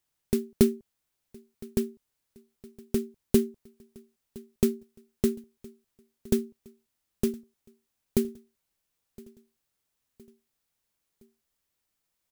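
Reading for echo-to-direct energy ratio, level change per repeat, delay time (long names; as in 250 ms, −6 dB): −22.0 dB, −6.0 dB, 1,015 ms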